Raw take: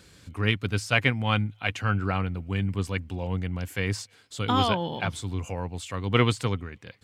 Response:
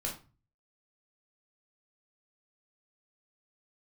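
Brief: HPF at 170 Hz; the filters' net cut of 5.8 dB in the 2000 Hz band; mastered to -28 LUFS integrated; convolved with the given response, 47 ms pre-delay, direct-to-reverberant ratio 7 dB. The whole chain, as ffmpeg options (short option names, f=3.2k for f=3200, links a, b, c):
-filter_complex "[0:a]highpass=170,equalizer=f=2k:t=o:g=-7.5,asplit=2[a][b];[1:a]atrim=start_sample=2205,adelay=47[c];[b][c]afir=irnorm=-1:irlink=0,volume=-9dB[d];[a][d]amix=inputs=2:normalize=0,volume=2dB"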